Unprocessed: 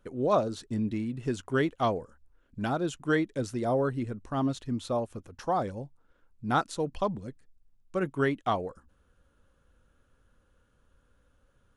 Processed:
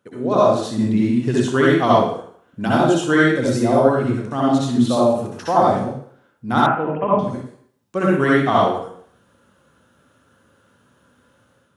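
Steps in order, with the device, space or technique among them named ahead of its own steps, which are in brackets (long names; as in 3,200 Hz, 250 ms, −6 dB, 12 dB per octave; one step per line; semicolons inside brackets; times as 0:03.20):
far laptop microphone (convolution reverb RT60 0.60 s, pre-delay 58 ms, DRR −6 dB; high-pass filter 110 Hz 24 dB per octave; automatic gain control gain up to 6.5 dB)
0:06.66–0:07.19: Butterworth low-pass 2,800 Hz 72 dB per octave
level +1 dB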